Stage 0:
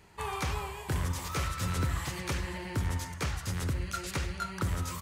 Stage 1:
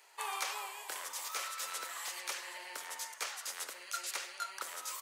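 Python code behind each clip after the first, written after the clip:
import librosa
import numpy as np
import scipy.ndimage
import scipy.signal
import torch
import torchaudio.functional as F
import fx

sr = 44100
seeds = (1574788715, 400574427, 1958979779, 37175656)

y = fx.high_shelf(x, sr, hz=3300.0, db=8.0)
y = fx.rider(y, sr, range_db=10, speed_s=2.0)
y = scipy.signal.sosfilt(scipy.signal.butter(4, 540.0, 'highpass', fs=sr, output='sos'), y)
y = y * librosa.db_to_amplitude(-5.5)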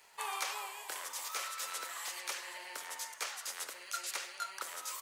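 y = fx.dmg_crackle(x, sr, seeds[0], per_s=280.0, level_db=-54.0)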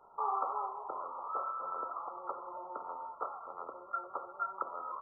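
y = fx.brickwall_lowpass(x, sr, high_hz=1400.0)
y = y * librosa.db_to_amplitude(7.5)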